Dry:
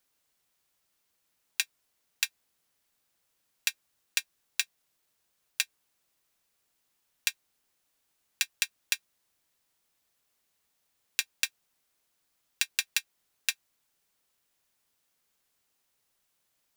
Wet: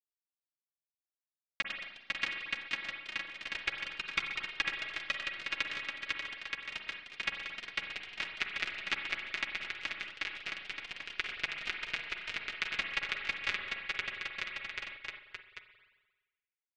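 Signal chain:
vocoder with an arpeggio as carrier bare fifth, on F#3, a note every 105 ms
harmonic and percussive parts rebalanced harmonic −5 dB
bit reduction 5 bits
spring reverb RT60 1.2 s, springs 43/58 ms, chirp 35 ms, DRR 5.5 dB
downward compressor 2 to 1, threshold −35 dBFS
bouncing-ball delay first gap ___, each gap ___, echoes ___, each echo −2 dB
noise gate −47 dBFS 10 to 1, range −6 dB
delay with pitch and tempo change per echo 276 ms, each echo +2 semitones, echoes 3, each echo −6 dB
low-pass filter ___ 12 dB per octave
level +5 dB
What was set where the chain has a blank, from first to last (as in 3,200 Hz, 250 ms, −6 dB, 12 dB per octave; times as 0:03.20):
500 ms, 0.85×, 6, 2,400 Hz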